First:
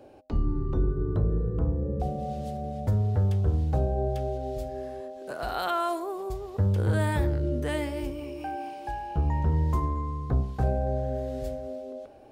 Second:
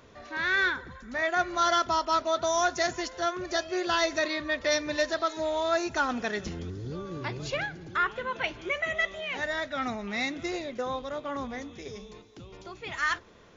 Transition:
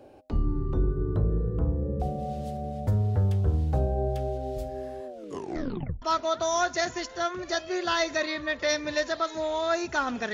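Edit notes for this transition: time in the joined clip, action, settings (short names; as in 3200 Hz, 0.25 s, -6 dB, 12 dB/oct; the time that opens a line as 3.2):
first
5.06 tape stop 0.96 s
6.02 switch to second from 2.04 s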